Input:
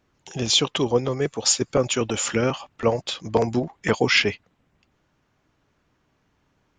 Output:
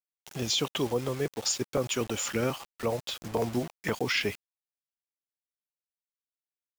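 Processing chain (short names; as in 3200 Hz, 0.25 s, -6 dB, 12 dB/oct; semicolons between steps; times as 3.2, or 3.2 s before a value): bit-crush 6-bit; limiter -11 dBFS, peak gain reduction 5 dB; gain -6.5 dB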